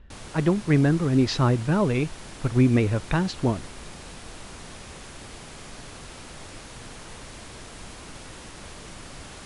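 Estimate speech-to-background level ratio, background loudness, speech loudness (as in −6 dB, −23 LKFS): 18.0 dB, −41.5 LKFS, −23.5 LKFS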